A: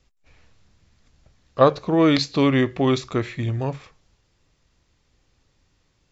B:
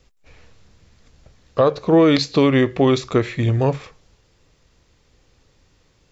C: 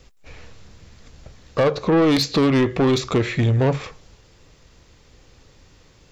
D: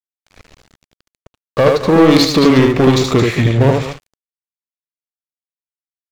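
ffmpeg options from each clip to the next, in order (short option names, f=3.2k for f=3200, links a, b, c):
-af "equalizer=f=470:t=o:w=0.48:g=5,alimiter=limit=-12.5dB:level=0:latency=1:release=329,volume=6.5dB"
-filter_complex "[0:a]asplit=2[a][b];[b]acompressor=threshold=-24dB:ratio=6,volume=-1.5dB[c];[a][c]amix=inputs=2:normalize=0,asoftclip=type=tanh:threshold=-14.5dB,volume=1.5dB"
-af "aecho=1:1:75.8|218.7:0.708|0.282,aeval=exprs='sgn(val(0))*max(abs(val(0))-0.02,0)':c=same,volume=6.5dB"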